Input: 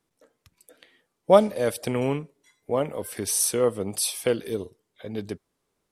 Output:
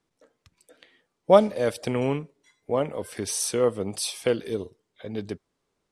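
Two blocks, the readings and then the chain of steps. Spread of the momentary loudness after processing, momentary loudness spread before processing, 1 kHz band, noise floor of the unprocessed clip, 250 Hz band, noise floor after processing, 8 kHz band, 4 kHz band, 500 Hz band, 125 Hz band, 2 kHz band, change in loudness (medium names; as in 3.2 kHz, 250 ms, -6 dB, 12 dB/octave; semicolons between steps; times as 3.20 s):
19 LU, 19 LU, 0.0 dB, -78 dBFS, 0.0 dB, -79 dBFS, -4.5 dB, -0.5 dB, 0.0 dB, 0.0 dB, 0.0 dB, -0.5 dB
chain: low-pass 7.7 kHz 12 dB/octave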